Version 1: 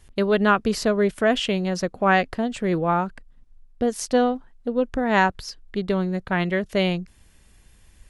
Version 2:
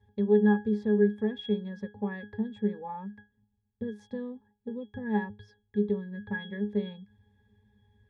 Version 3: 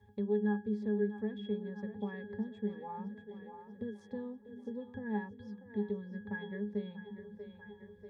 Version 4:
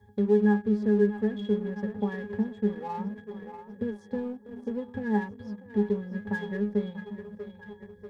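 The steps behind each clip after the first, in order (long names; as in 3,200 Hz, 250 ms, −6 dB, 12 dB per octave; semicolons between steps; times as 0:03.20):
high-pass filter 54 Hz; downward compressor 2 to 1, threshold −25 dBFS, peak gain reduction 7 dB; resonances in every octave G#, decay 0.25 s; level +7.5 dB
parametric band 3,100 Hz −2.5 dB; echo with a time of its own for lows and highs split 310 Hz, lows 353 ms, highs 640 ms, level −13 dB; multiband upward and downward compressor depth 40%; level −7.5 dB
parametric band 2,800 Hz −6.5 dB 0.57 octaves; in parallel at −3.5 dB: dead-zone distortion −49.5 dBFS; on the sum: level +5.5 dB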